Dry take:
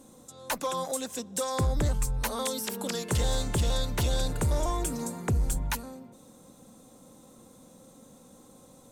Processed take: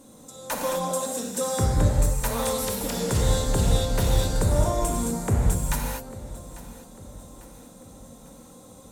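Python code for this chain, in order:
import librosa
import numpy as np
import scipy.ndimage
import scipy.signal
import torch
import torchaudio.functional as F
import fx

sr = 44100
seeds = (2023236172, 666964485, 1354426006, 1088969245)

p1 = fx.dynamic_eq(x, sr, hz=2900.0, q=0.7, threshold_db=-49.0, ratio=4.0, max_db=-5)
p2 = p1 + fx.echo_feedback(p1, sr, ms=847, feedback_pct=50, wet_db=-18, dry=0)
p3 = fx.rev_gated(p2, sr, seeds[0], gate_ms=270, shape='flat', drr_db=-1.5)
y = p3 * librosa.db_to_amplitude(2.0)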